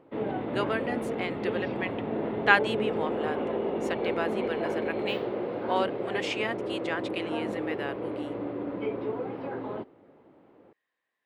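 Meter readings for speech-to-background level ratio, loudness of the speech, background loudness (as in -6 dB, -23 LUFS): 0.5 dB, -32.0 LUFS, -32.5 LUFS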